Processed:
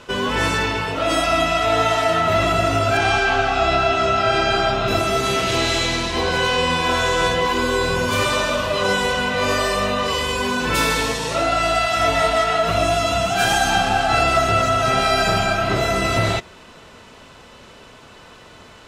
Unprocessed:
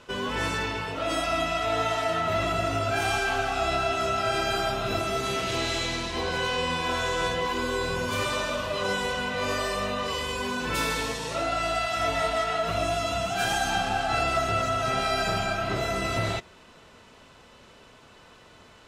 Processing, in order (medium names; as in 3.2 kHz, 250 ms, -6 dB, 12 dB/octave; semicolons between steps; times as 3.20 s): 2.97–4.88 s: low-pass 5.3 kHz 12 dB/octave; trim +8.5 dB